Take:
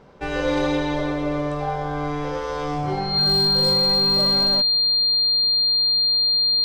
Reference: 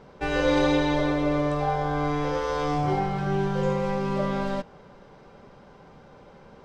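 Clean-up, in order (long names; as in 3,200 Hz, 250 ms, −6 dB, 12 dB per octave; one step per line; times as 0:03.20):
clipped peaks rebuilt −13.5 dBFS
notch filter 4,200 Hz, Q 30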